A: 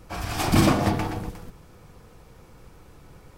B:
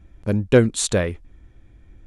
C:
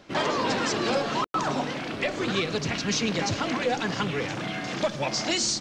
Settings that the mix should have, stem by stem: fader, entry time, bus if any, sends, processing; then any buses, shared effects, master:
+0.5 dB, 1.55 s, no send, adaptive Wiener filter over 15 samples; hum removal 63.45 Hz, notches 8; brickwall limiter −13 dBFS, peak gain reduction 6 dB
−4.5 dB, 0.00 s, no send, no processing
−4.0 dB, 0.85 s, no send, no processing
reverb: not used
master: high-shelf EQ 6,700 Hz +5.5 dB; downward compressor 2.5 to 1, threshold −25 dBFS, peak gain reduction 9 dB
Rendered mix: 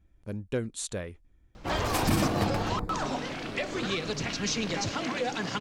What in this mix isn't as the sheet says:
stem A: missing brickwall limiter −13 dBFS, peak gain reduction 6 dB
stem B −4.5 dB → −15.0 dB
stem C: entry 0.85 s → 1.55 s

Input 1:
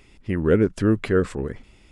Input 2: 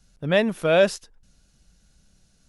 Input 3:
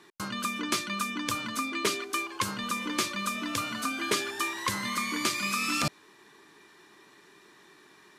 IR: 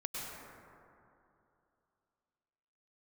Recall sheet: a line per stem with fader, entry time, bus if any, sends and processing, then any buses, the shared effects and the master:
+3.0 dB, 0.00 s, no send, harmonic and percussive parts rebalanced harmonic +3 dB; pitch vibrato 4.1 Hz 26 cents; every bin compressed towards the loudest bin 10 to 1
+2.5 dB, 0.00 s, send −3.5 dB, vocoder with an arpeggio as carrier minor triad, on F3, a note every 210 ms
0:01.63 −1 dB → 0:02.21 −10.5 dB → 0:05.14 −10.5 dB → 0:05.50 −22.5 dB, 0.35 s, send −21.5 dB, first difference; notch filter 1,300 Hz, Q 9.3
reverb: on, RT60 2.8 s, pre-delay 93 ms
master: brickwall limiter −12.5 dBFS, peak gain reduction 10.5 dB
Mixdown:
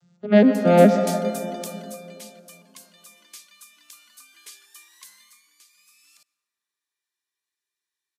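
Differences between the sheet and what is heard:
stem 1: muted
master: missing brickwall limiter −12.5 dBFS, peak gain reduction 10.5 dB

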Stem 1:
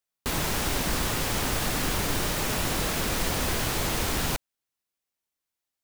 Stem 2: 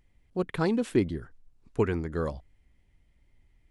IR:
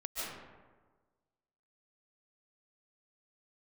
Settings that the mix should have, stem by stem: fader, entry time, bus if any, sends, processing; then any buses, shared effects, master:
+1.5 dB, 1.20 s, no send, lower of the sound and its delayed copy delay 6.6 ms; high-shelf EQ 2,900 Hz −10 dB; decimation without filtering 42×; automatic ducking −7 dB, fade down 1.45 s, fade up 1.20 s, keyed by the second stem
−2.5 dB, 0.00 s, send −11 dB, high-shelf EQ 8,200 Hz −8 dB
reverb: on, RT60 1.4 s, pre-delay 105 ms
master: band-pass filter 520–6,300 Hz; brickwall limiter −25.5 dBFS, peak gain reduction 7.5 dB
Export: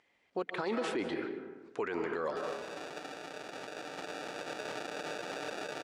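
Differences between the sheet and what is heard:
stem 1: entry 1.20 s → 2.10 s
stem 2 −2.5 dB → +6.0 dB

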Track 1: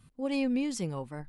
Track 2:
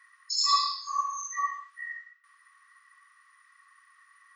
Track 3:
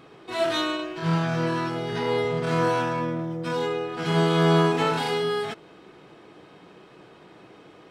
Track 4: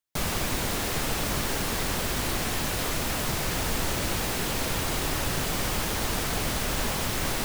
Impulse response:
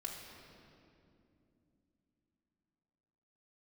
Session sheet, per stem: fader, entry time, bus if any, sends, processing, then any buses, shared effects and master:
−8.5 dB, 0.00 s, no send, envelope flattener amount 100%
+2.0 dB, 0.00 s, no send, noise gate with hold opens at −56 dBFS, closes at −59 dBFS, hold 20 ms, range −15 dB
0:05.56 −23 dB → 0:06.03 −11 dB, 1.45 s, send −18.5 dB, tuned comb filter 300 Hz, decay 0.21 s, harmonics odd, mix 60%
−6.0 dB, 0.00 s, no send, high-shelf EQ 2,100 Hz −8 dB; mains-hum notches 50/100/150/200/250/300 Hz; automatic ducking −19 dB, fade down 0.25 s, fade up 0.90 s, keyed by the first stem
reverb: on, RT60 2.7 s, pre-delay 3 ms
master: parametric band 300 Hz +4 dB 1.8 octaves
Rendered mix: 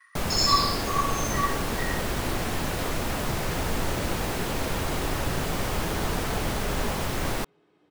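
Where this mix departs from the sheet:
stem 1: muted
stem 4 −6.0 dB → +2.5 dB
master: missing parametric band 300 Hz +4 dB 1.8 octaves

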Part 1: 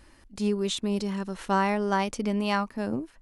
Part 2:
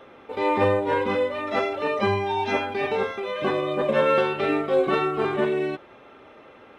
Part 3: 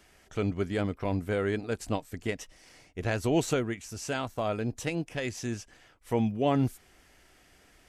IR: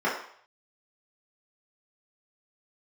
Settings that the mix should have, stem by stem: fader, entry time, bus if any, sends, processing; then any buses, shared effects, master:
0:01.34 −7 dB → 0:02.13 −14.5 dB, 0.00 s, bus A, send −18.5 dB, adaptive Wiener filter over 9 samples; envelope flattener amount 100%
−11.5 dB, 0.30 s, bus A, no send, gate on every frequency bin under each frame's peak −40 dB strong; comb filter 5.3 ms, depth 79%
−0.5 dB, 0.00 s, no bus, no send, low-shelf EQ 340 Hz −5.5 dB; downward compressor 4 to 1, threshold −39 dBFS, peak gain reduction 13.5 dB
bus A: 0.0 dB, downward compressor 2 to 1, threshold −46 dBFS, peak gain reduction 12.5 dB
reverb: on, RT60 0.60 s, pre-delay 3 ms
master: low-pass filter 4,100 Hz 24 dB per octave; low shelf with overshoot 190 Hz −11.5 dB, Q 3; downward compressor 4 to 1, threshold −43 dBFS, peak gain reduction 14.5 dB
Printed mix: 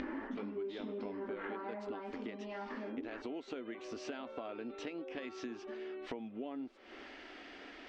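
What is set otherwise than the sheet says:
stem 1 −7.0 dB → +1.5 dB
stem 3 −0.5 dB → +10.0 dB

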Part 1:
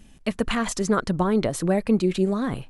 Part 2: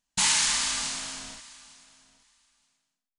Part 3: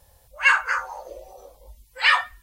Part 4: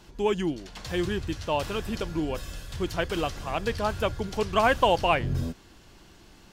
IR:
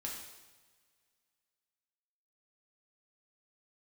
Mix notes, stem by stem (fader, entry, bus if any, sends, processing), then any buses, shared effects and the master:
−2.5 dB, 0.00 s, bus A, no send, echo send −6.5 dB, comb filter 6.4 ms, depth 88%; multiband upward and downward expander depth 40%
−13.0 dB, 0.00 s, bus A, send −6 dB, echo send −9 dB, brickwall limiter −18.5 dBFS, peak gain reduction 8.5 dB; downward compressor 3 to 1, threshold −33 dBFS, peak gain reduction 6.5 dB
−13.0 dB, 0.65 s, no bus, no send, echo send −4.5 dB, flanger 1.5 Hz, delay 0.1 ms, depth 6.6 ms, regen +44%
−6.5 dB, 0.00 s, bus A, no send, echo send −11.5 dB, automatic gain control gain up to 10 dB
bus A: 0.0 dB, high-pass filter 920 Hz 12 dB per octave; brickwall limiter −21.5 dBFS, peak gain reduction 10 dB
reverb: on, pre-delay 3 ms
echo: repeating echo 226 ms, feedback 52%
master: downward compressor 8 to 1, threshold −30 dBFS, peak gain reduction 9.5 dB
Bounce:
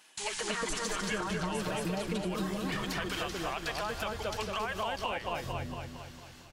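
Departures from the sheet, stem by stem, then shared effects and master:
stem 1: missing multiband upward and downward expander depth 40%
stem 2 −13.0 dB → −7.0 dB

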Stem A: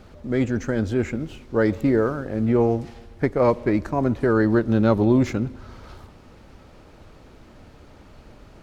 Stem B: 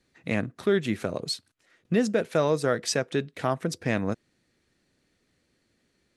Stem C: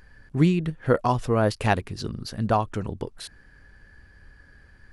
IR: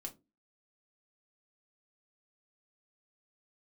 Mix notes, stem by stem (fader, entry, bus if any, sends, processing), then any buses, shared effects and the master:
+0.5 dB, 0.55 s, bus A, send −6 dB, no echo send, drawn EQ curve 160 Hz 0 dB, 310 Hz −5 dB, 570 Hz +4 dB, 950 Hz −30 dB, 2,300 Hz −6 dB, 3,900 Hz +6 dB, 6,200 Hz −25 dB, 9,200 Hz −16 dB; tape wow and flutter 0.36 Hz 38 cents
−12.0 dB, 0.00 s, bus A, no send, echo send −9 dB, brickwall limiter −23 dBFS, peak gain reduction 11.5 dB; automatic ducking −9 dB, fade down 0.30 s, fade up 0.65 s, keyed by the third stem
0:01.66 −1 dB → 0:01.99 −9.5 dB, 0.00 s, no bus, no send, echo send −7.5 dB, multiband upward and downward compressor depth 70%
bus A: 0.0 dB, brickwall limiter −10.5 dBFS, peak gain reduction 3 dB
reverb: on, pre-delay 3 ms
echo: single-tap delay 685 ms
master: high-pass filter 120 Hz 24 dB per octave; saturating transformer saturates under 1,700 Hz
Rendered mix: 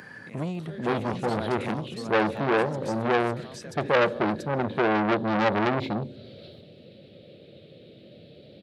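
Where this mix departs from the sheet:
stem B −12.0 dB → −1.0 dB
stem C −1.0 dB → −7.5 dB

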